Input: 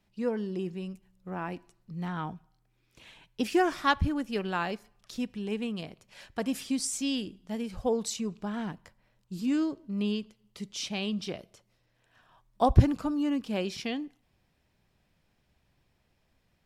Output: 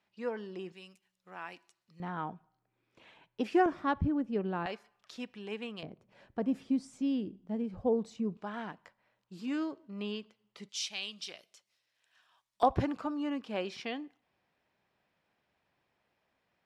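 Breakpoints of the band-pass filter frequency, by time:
band-pass filter, Q 0.52
1.5 kHz
from 0.72 s 3.8 kHz
from 2.00 s 680 Hz
from 3.66 s 270 Hz
from 4.66 s 1.4 kHz
from 5.83 s 280 Hz
from 8.37 s 1.2 kHz
from 10.69 s 5 kHz
from 12.63 s 1.1 kHz

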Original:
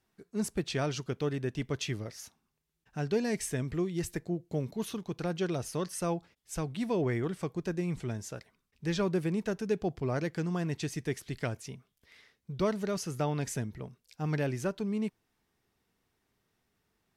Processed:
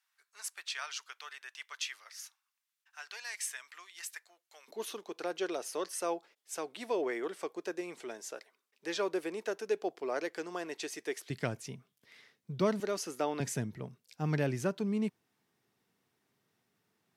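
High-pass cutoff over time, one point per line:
high-pass 24 dB/octave
1.1 kHz
from 4.68 s 360 Hz
from 11.30 s 120 Hz
from 12.80 s 270 Hz
from 13.40 s 110 Hz

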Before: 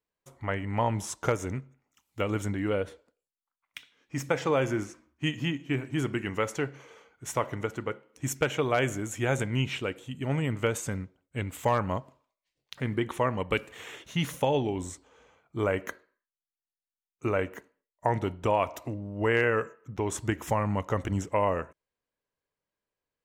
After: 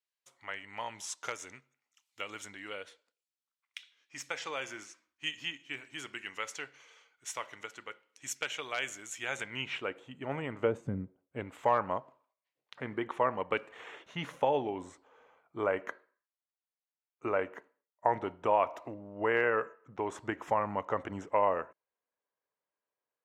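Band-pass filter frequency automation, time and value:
band-pass filter, Q 0.73
9.17 s 4.1 kHz
9.92 s 970 Hz
10.56 s 970 Hz
10.84 s 170 Hz
11.55 s 920 Hz

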